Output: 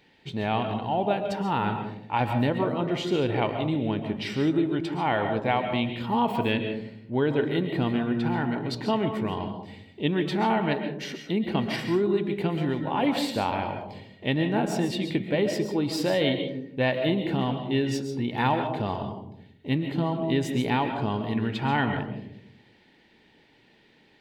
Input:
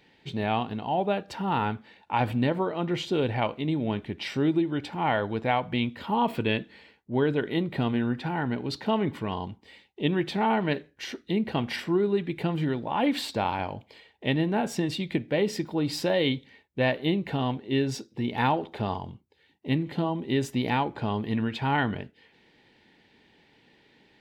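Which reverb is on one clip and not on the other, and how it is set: algorithmic reverb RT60 0.7 s, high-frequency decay 0.25×, pre-delay 95 ms, DRR 6 dB

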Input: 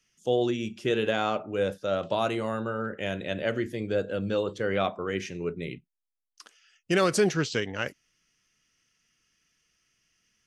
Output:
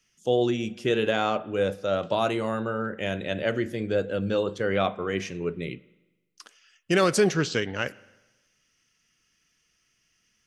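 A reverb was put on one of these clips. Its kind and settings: spring tank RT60 1.1 s, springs 41/50 ms, chirp 50 ms, DRR 19.5 dB; trim +2 dB

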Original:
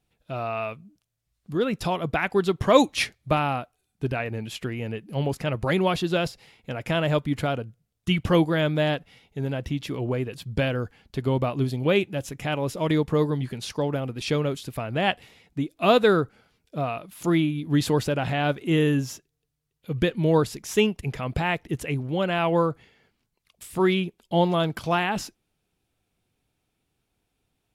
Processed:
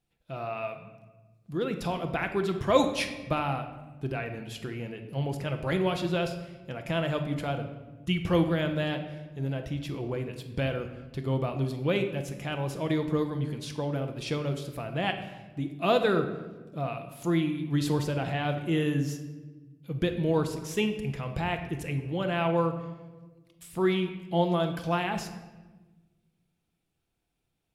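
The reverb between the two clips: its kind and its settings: simulated room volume 850 m³, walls mixed, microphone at 0.77 m; trim -6.5 dB

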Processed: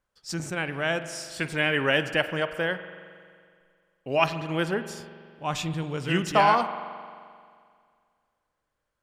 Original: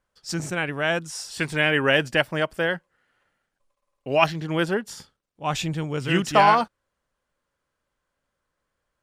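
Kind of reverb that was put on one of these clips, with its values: spring tank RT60 2.1 s, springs 43 ms, chirp 30 ms, DRR 10.5 dB; trim -3.5 dB

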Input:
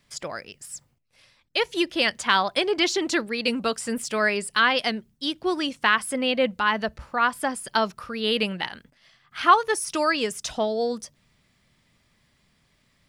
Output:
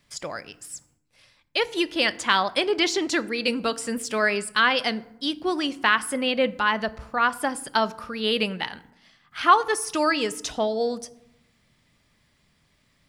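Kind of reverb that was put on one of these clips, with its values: FDN reverb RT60 0.82 s, low-frequency decay 1.5×, high-frequency decay 0.55×, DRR 15 dB

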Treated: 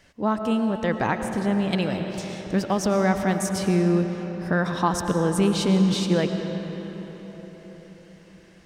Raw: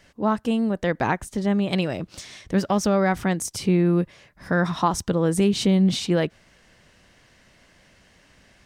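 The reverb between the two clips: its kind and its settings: algorithmic reverb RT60 4.9 s, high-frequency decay 0.6×, pre-delay 70 ms, DRR 5.5 dB; trim -1.5 dB

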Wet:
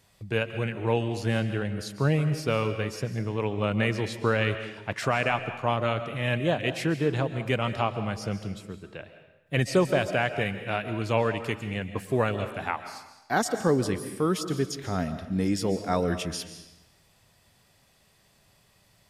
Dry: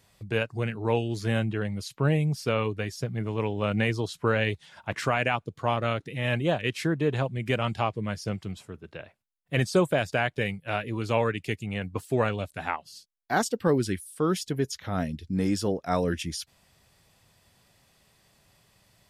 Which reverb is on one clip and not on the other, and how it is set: algorithmic reverb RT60 0.95 s, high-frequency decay 0.95×, pre-delay 100 ms, DRR 9.5 dB

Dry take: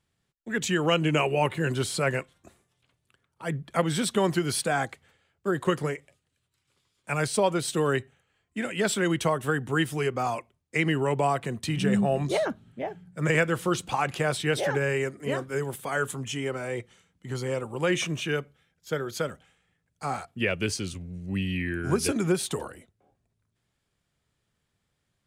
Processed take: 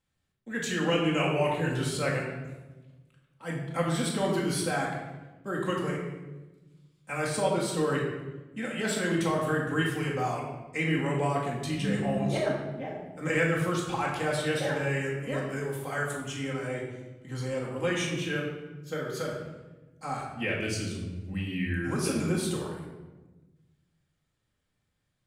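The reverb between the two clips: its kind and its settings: simulated room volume 620 m³, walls mixed, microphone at 2.1 m; trim -7.5 dB

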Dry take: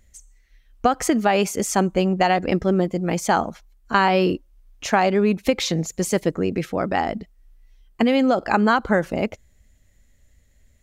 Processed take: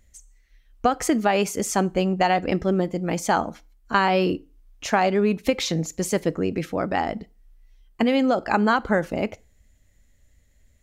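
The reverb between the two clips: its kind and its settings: FDN reverb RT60 0.34 s, low-frequency decay 1×, high-frequency decay 0.9×, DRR 17.5 dB; trim -2 dB

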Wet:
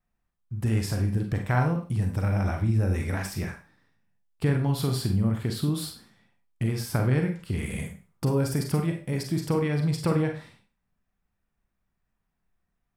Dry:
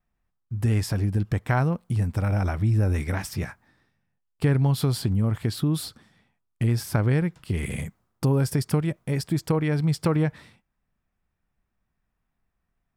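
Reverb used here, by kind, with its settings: Schroeder reverb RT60 0.35 s, combs from 32 ms, DRR 3 dB; trim -3 dB

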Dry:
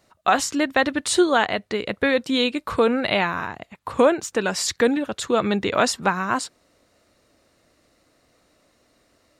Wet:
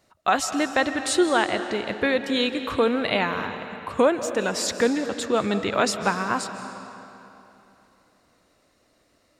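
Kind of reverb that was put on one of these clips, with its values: algorithmic reverb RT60 3.1 s, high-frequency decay 0.8×, pre-delay 115 ms, DRR 9 dB; trim -2.5 dB

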